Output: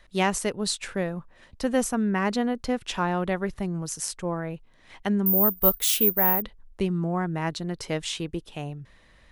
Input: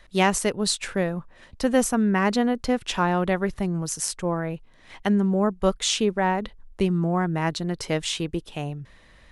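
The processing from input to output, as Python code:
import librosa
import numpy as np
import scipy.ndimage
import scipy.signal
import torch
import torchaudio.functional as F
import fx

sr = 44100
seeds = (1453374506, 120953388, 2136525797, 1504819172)

y = fx.resample_bad(x, sr, factor=3, down='none', up='zero_stuff', at=(5.26, 6.42))
y = F.gain(torch.from_numpy(y), -3.5).numpy()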